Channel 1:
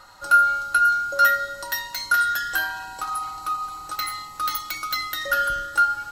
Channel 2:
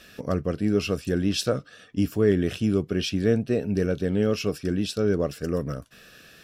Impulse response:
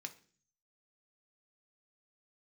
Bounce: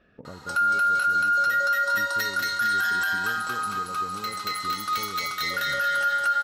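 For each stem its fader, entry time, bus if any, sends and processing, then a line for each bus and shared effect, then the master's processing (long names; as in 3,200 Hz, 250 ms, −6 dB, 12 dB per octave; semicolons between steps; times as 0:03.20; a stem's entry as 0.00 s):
+3.0 dB, 0.25 s, no send, echo send −4.5 dB, meter weighting curve A; automatic ducking −9 dB, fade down 1.95 s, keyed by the second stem
−7.5 dB, 0.00 s, no send, echo send −11.5 dB, low-pass filter 1,400 Hz 12 dB per octave; downward compressor 10 to 1, threshold −31 dBFS, peak gain reduction 16 dB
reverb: not used
echo: repeating echo 230 ms, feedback 50%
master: brickwall limiter −17 dBFS, peak gain reduction 10.5 dB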